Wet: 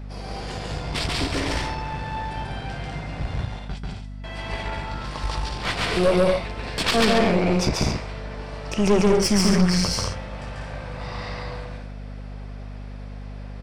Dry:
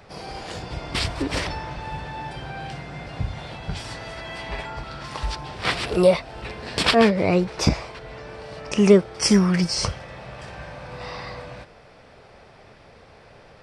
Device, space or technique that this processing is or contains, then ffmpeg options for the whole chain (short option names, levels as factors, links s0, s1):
valve amplifier with mains hum: -filter_complex "[0:a]asettb=1/sr,asplit=3[s0][s1][s2];[s0]atrim=end=3.454[s3];[s1]atrim=start=3.45:end=4.24,asetpts=PTS-STARTPTS,afade=t=in:d=0.004:c=qsin,afade=t=out:st=0.786:d=0.004:c=qsin,agate=range=0.0708:threshold=0.0398:ratio=16:detection=peak[s4];[s2]atrim=start=4.236[s5];[s3][s4]acrossfade=d=0.004:c1=hsin:c2=qsin[s6];[s6][s5]acrossfade=d=0.004:c1=qsin:c2=hsin,aecho=1:1:139.9|195.3|227.4|274.1:0.891|0.562|0.447|0.316,aeval=exprs='(tanh(4.47*val(0)+0.55)-tanh(0.55))/4.47':c=same,aeval=exprs='val(0)+0.02*(sin(2*PI*50*n/s)+sin(2*PI*2*50*n/s)/2+sin(2*PI*3*50*n/s)/3+sin(2*PI*4*50*n/s)/4+sin(2*PI*5*50*n/s)/5)':c=same"